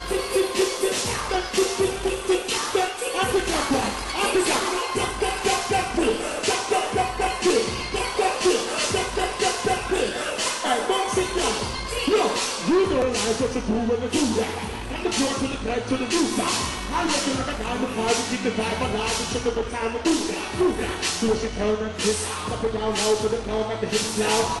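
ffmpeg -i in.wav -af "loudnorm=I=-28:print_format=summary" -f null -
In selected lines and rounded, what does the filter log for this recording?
Input Integrated:    -23.6 LUFS
Input True Peak:      -7.6 dBTP
Input LRA:             1.5 LU
Input Threshold:     -33.6 LUFS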